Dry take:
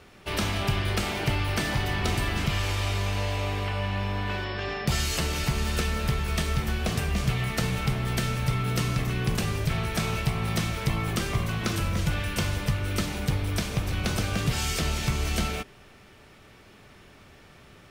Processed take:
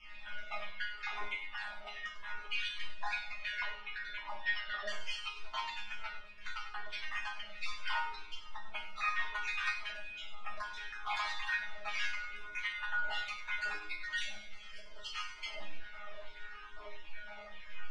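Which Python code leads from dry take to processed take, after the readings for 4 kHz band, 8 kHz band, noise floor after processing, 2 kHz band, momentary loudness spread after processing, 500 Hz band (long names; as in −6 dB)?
−10.0 dB, −21.5 dB, −49 dBFS, −4.0 dB, 14 LU, −20.0 dB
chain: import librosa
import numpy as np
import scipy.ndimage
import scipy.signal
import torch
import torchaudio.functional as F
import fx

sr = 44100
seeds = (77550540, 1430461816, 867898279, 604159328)

y = fx.spec_dropout(x, sr, seeds[0], share_pct=36)
y = fx.high_shelf(y, sr, hz=4100.0, db=-8.0)
y = fx.over_compress(y, sr, threshold_db=-40.0, ratio=-1.0)
y = fx.filter_lfo_highpass(y, sr, shape='saw_down', hz=1.6, low_hz=580.0, high_hz=2800.0, q=1.8)
y = fx.dmg_noise_colour(y, sr, seeds[1], colour='brown', level_db=-61.0)
y = fx.air_absorb(y, sr, metres=120.0)
y = fx.resonator_bank(y, sr, root=56, chord='fifth', decay_s=0.34)
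y = fx.echo_feedback(y, sr, ms=99, feedback_pct=40, wet_db=-11.5)
y = fx.room_shoebox(y, sr, seeds[2], volume_m3=480.0, walls='furnished', distance_m=1.4)
y = fx.comb_cascade(y, sr, direction='falling', hz=0.71)
y = y * 10.0 ** (16.5 / 20.0)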